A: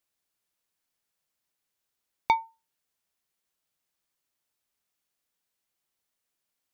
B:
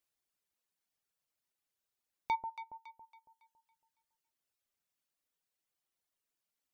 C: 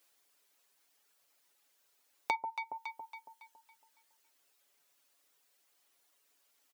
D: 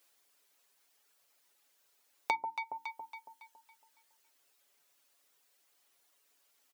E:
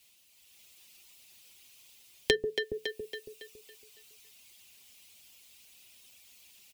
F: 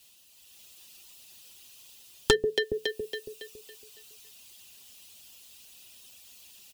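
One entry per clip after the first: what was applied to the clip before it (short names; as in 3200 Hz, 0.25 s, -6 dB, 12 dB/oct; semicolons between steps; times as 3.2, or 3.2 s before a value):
reverb removal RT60 1.6 s; limiter -20 dBFS, peak gain reduction 9.5 dB; echo with dull and thin repeats by turns 0.139 s, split 900 Hz, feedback 63%, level -6 dB; gain -3.5 dB
HPF 320 Hz; comb 7.1 ms; compressor 2:1, threshold -53 dBFS, peak gain reduction 12 dB; gain +14 dB
notches 60/120/180/240/300/360 Hz; gain +1 dB
resonant high shelf 2500 Hz +6.5 dB, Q 3; AGC gain up to 7.5 dB; frequency shift -470 Hz
one-sided fold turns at -19 dBFS; bell 2200 Hz -12 dB 0.21 oct; gain +5.5 dB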